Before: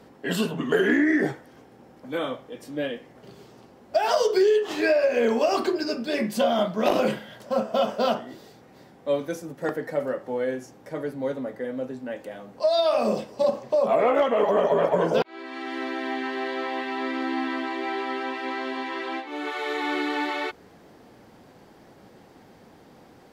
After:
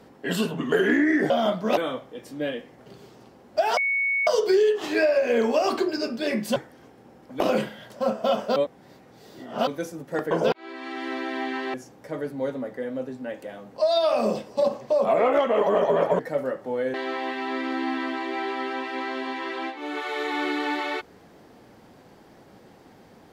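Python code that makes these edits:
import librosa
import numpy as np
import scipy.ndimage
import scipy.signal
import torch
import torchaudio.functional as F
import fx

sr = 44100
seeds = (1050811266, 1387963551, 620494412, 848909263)

y = fx.edit(x, sr, fx.swap(start_s=1.3, length_s=0.84, other_s=6.43, other_length_s=0.47),
    fx.insert_tone(at_s=4.14, length_s=0.5, hz=2220.0, db=-21.0),
    fx.reverse_span(start_s=8.06, length_s=1.11),
    fx.swap(start_s=9.81, length_s=0.75, other_s=15.01, other_length_s=1.43), tone=tone)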